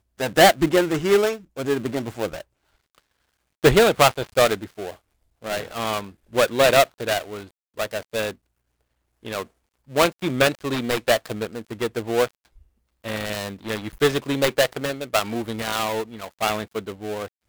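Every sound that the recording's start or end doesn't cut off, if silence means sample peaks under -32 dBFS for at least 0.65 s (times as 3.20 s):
3.64–8.31 s
9.25–12.28 s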